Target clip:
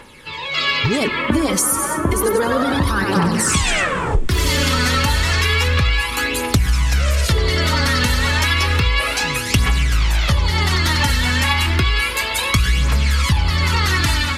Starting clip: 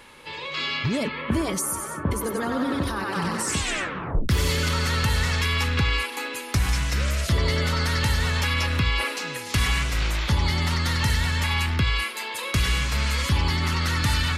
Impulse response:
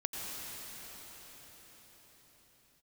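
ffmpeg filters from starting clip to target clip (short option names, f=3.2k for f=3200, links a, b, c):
-filter_complex "[0:a]dynaudnorm=f=390:g=3:m=6.5dB,aphaser=in_gain=1:out_gain=1:delay=4.1:decay=0.55:speed=0.31:type=triangular,asplit=2[a][b];[1:a]atrim=start_sample=2205,asetrate=70560,aresample=44100[c];[b][c]afir=irnorm=-1:irlink=0,volume=-18dB[d];[a][d]amix=inputs=2:normalize=0,acompressor=threshold=-16dB:ratio=6,volume=3dB"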